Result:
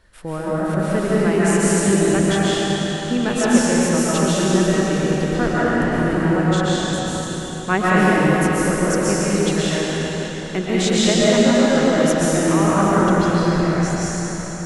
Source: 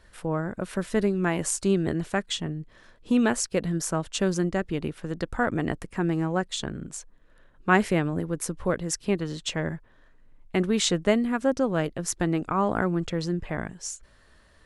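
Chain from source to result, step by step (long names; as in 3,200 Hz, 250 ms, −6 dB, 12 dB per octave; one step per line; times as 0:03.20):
convolution reverb RT60 4.5 s, pre-delay 95 ms, DRR −9 dB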